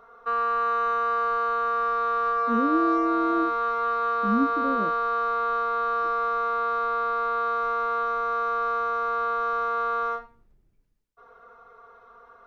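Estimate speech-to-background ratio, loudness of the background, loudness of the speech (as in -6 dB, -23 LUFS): -2.5 dB, -25.5 LUFS, -28.0 LUFS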